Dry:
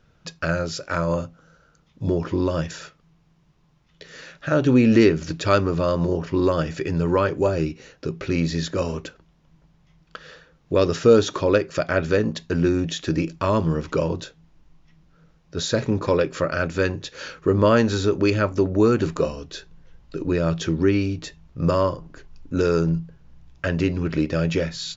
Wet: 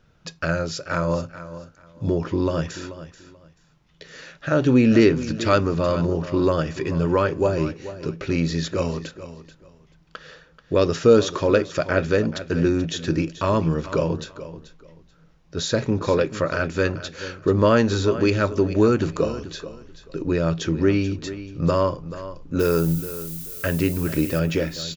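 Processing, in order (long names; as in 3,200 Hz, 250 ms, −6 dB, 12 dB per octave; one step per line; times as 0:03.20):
0:22.59–0:24.38: background noise violet −36 dBFS
repeating echo 434 ms, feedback 22%, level −14 dB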